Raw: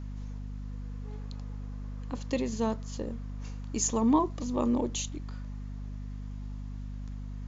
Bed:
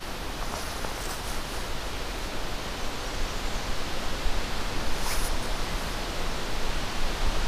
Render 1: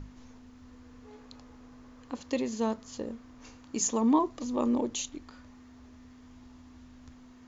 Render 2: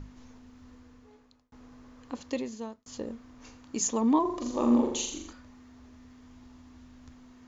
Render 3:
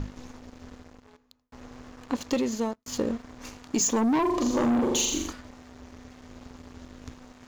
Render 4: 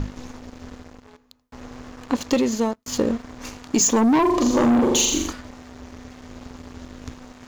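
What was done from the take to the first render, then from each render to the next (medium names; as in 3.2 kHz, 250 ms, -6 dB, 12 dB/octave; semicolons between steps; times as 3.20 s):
hum notches 50/100/150/200 Hz
0.70–1.52 s: fade out; 2.23–2.86 s: fade out; 4.21–5.33 s: flutter echo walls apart 7.2 m, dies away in 0.69 s
waveshaping leveller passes 3; compression, threshold -22 dBFS, peak gain reduction 6.5 dB
trim +6.5 dB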